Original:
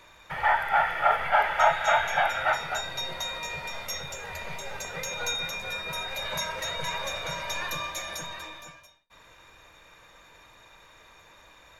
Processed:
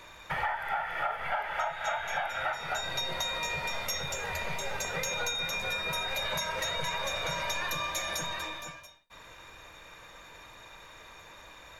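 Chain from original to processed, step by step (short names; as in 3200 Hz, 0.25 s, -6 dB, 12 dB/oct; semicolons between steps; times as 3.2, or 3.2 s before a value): compressor 16:1, threshold -32 dBFS, peak gain reduction 17.5 dB; gain +3.5 dB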